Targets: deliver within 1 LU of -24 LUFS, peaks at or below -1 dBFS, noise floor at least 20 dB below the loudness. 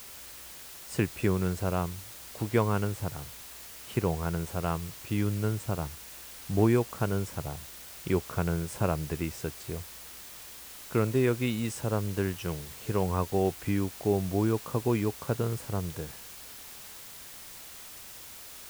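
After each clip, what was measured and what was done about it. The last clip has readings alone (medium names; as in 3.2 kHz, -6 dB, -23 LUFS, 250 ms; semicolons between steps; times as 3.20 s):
noise floor -46 dBFS; noise floor target -51 dBFS; loudness -30.5 LUFS; peak level -12.5 dBFS; loudness target -24.0 LUFS
-> noise print and reduce 6 dB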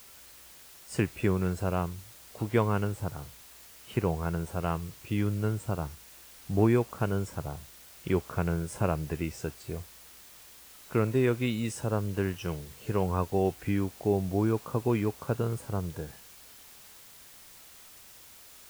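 noise floor -52 dBFS; loudness -31.0 LUFS; peak level -12.5 dBFS; loudness target -24.0 LUFS
-> trim +7 dB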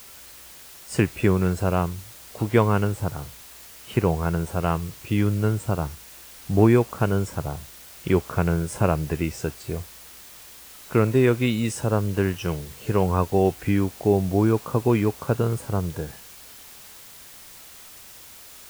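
loudness -24.0 LUFS; peak level -5.5 dBFS; noise floor -45 dBFS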